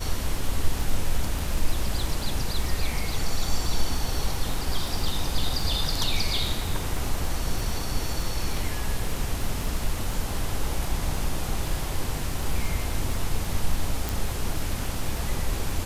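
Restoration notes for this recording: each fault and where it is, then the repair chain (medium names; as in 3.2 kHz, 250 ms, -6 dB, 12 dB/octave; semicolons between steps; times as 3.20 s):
crackle 27 per s -28 dBFS
14.09 s: pop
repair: de-click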